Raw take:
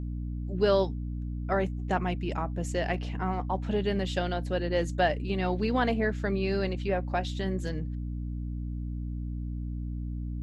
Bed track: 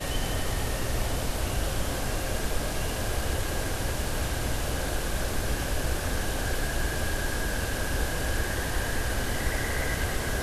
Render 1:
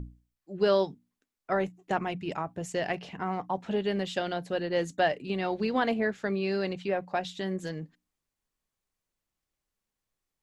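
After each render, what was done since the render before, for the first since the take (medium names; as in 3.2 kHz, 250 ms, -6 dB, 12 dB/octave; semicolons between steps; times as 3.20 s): hum notches 60/120/180/240/300 Hz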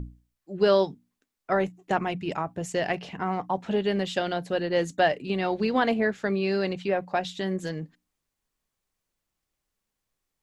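trim +3.5 dB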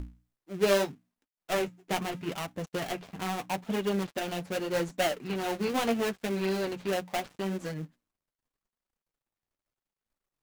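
dead-time distortion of 0.27 ms; flange 0.79 Hz, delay 3.1 ms, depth 8.4 ms, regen -30%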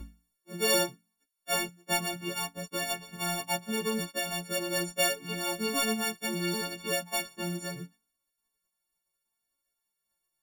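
partials quantised in pitch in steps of 4 st; flange 0.73 Hz, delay 3.6 ms, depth 2.6 ms, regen -27%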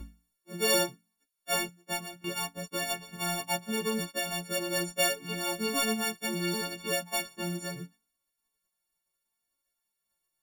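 1.61–2.24 s: fade out, to -16 dB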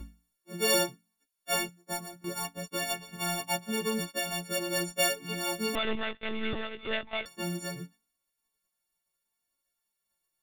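1.78–2.45 s: peaking EQ 2.8 kHz -12.5 dB 0.64 oct; 5.75–7.26 s: monotone LPC vocoder at 8 kHz 220 Hz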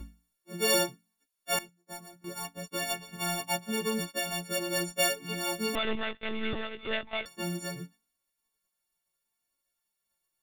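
1.59–2.89 s: fade in, from -15.5 dB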